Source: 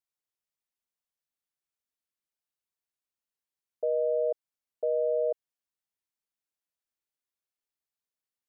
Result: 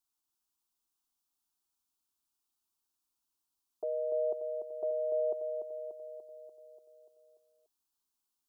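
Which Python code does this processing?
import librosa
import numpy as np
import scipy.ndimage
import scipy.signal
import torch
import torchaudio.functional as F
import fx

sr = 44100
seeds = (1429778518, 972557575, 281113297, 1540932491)

y = fx.peak_eq(x, sr, hz=540.0, db=-7.0, octaves=0.77)
y = fx.fixed_phaser(y, sr, hz=530.0, stages=6)
y = fx.echo_feedback(y, sr, ms=292, feedback_pct=59, wet_db=-6.5)
y = F.gain(torch.from_numpy(y), 7.0).numpy()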